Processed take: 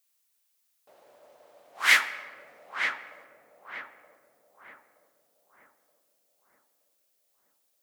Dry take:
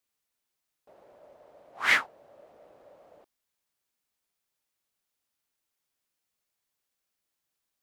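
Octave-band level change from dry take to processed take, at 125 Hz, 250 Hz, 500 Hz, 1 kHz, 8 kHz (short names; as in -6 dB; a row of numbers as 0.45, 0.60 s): n/a, -2.5 dB, -0.5 dB, +2.5 dB, +9.0 dB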